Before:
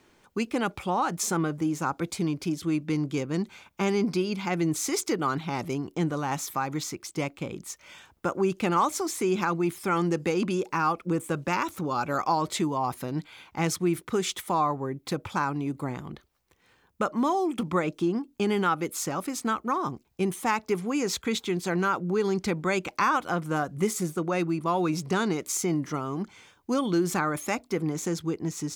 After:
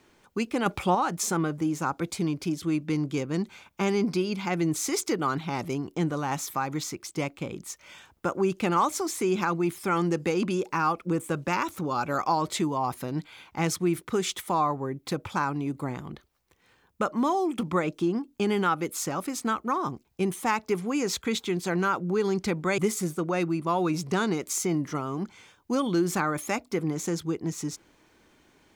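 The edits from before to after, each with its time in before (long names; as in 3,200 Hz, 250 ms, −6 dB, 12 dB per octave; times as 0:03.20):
0:00.66–0:00.95: clip gain +5 dB
0:22.78–0:23.77: remove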